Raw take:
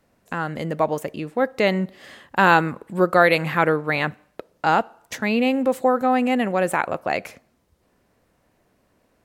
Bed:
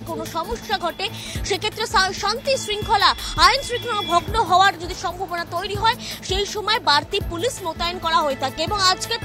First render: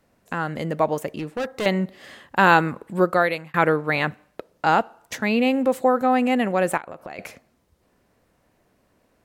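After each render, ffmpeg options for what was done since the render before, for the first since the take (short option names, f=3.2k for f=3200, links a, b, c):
-filter_complex "[0:a]asettb=1/sr,asplit=3[a][b][c];[a]atrim=end=1.144[d];[b]atrim=start=1.14:end=1.66,asetpts=PTS-STARTPTS,afade=t=in:d=0.004:c=qsin,afade=t=out:st=0.516:d=0.004:c=qsin,volume=23dB,asoftclip=hard,volume=-23dB[e];[c]atrim=start=1.656[f];[d][e]acrossfade=d=0.004:c1=hsin:c2=qsin[g];[g][f]acrossfade=d=0.004:c1=qsin:c2=hsin,asettb=1/sr,asplit=3[h][i][j];[h]atrim=end=6.774[k];[i]atrim=start=6.77:end=7.19,asetpts=PTS-STARTPTS,afade=t=in:d=0.004:c=qsin,afade=t=out:st=0.416:d=0.004:c=qsin,acompressor=threshold=-31dB:ratio=16:attack=3.2:release=140:knee=1:detection=peak[l];[j]atrim=start=7.186[m];[k][l]acrossfade=d=0.004:c1=hsin:c2=qsin[n];[n][m]acrossfade=d=0.004:c1=qsin:c2=hsin,asplit=2[o][p];[o]atrim=end=3.54,asetpts=PTS-STARTPTS,afade=t=out:st=3:d=0.54[q];[p]atrim=start=3.54,asetpts=PTS-STARTPTS,afade=t=in:d=0.004:c=hsin[r];[q][r]concat=n=2:v=0:a=1"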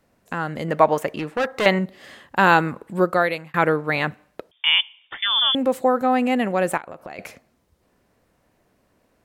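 -filter_complex "[0:a]asettb=1/sr,asplit=3[a][b][c];[a]atrim=end=0.684[d];[b]atrim=start=0.68:end=1.79,asetpts=PTS-STARTPTS,afade=t=in:d=0.004:c=qsin,afade=t=out:st=1.106:d=0.004:c=qsin,equalizer=f=1.4k:t=o:w=2.8:g=8[e];[c]atrim=start=1.786[f];[d][e]acrossfade=d=0.004:c1=hsin:c2=qsin[g];[g][f]acrossfade=d=0.004:c1=qsin:c2=hsin,asettb=1/sr,asplit=3[h][i][j];[h]atrim=end=4.514[k];[i]atrim=start=4.51:end=5.55,asetpts=PTS-STARTPTS,afade=t=in:d=0.004:c=qsin,afade=t=out:st=1.036:d=0.004:c=qsin,lowpass=f=3.1k:t=q:w=0.5098,lowpass=f=3.1k:t=q:w=0.6013,lowpass=f=3.1k:t=q:w=0.9,lowpass=f=3.1k:t=q:w=2.563,afreqshift=-3700[l];[j]atrim=start=5.546[m];[k][l]acrossfade=d=0.004:c1=hsin:c2=qsin[n];[n][m]acrossfade=d=0.004:c1=qsin:c2=hsin"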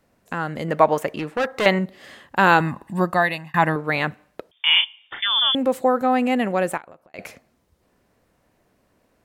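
-filter_complex "[0:a]asettb=1/sr,asplit=3[a][b][c];[a]atrim=end=2.604[d];[b]atrim=start=2.6:end=3.76,asetpts=PTS-STARTPTS,afade=t=in:d=0.004:c=qsin,afade=t=out:st=1.156:d=0.004:c=qsin,aecho=1:1:1.1:0.73,atrim=end_sample=51156[e];[c]atrim=start=3.756[f];[d][e]acrossfade=d=0.004:c1=hsin:c2=qsin[g];[g][f]acrossfade=d=0.004:c1=qsin:c2=hsin,asettb=1/sr,asplit=3[h][i][j];[h]atrim=end=4.534[k];[i]atrim=start=4.53:end=5.26,asetpts=PTS-STARTPTS,afade=t=in:d=0.004:c=qsin,afade=t=out:st=0.726:d=0.004:c=qsin,asplit=2[l][m];[m]adelay=36,volume=-5.5dB[n];[l][n]amix=inputs=2:normalize=0,atrim=end_sample=32193[o];[j]atrim=start=5.256[p];[k][o]acrossfade=d=0.004:c1=hsin:c2=qsin[q];[q][p]acrossfade=d=0.004:c1=qsin:c2=hsin,asplit=2[r][s];[r]atrim=end=7.14,asetpts=PTS-STARTPTS,afade=t=out:st=6.58:d=0.56[t];[s]atrim=start=7.14,asetpts=PTS-STARTPTS,afade=t=in:d=0.004:c=hsin[u];[t][u]concat=n=2:v=0:a=1"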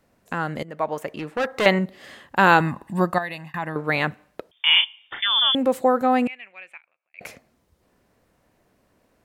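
-filter_complex "[0:a]asettb=1/sr,asplit=3[a][b][c];[a]atrim=end=3.184[d];[b]atrim=start=3.18:end=3.76,asetpts=PTS-STARTPTS,afade=t=in:d=0.004:c=qsin,afade=t=out:st=0.576:d=0.004:c=qsin,acompressor=threshold=-33dB:ratio=2:attack=3.2:release=140:knee=1:detection=peak[e];[c]atrim=start=3.756[f];[d][e]acrossfade=d=0.004:c1=hsin:c2=qsin[g];[g][f]acrossfade=d=0.004:c1=qsin:c2=hsin,asettb=1/sr,asplit=3[h][i][j];[h]atrim=end=6.274[k];[i]atrim=start=6.27:end=7.21,asetpts=PTS-STARTPTS,afade=t=in:d=0.004:c=qsin,afade=t=out:st=0.936:d=0.004:c=qsin,bandpass=f=2.4k:t=q:w=8.8[l];[j]atrim=start=7.206[m];[k][l]acrossfade=d=0.004:c1=hsin:c2=qsin[n];[n][m]acrossfade=d=0.004:c1=qsin:c2=hsin,asplit=2[o][p];[o]atrim=end=0.63,asetpts=PTS-STARTPTS,afade=t=out:st=0.626:d=0.004:c=hsin:silence=0.141254[q];[p]atrim=start=0.63,asetpts=PTS-STARTPTS,afade=t=in:d=0.97:silence=0.141254[r];[q][r]concat=n=2:v=0:a=1"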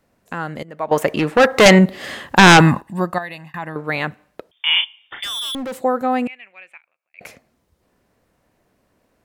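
-filter_complex "[0:a]asettb=1/sr,asplit=3[a][b][c];[a]atrim=end=0.914[d];[b]atrim=start=0.91:end=2.81,asetpts=PTS-STARTPTS,afade=t=in:d=0.004:c=qsin,afade=t=out:st=1.896:d=0.004:c=qsin,aeval=exprs='0.75*sin(PI/2*2.82*val(0)/0.75)':c=same[e];[c]atrim=start=2.806[f];[d][e]acrossfade=d=0.004:c1=hsin:c2=qsin[g];[g][f]acrossfade=d=0.004:c1=qsin:c2=hsin,asplit=3[h][i][j];[h]afade=t=out:st=5.22:d=0.02[k];[i]asoftclip=type=hard:threshold=-24.5dB,afade=t=in:st=5.22:d=0.02,afade=t=out:st=5.76:d=0.02[l];[j]afade=t=in:st=5.76:d=0.02[m];[k][l][m]amix=inputs=3:normalize=0"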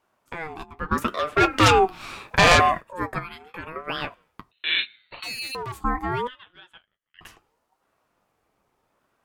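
-af "flanger=delay=7.6:depth=2.4:regen=-44:speed=0.36:shape=triangular,aeval=exprs='val(0)*sin(2*PI*720*n/s+720*0.25/0.76*sin(2*PI*0.76*n/s))':c=same"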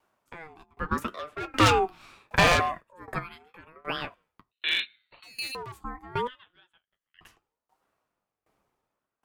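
-filter_complex "[0:a]acrossover=split=610[a][b];[b]aeval=exprs='clip(val(0),-1,0.211)':c=same[c];[a][c]amix=inputs=2:normalize=0,aeval=exprs='val(0)*pow(10,-20*if(lt(mod(1.3*n/s,1),2*abs(1.3)/1000),1-mod(1.3*n/s,1)/(2*abs(1.3)/1000),(mod(1.3*n/s,1)-2*abs(1.3)/1000)/(1-2*abs(1.3)/1000))/20)':c=same"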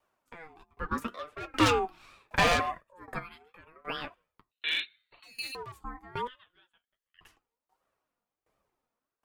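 -af "flanger=delay=1.6:depth=2.7:regen=47:speed=1.4:shape=sinusoidal"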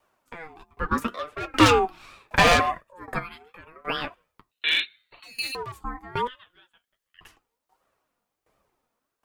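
-af "volume=7.5dB,alimiter=limit=-3dB:level=0:latency=1"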